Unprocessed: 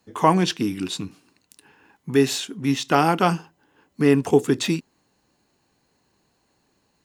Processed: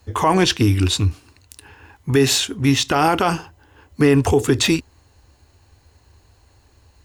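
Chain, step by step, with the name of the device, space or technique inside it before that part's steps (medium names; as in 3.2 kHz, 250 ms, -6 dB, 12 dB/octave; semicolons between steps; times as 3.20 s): car stereo with a boomy subwoofer (resonant low shelf 120 Hz +13 dB, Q 3; peak limiter -15 dBFS, peak gain reduction 11 dB); trim +9 dB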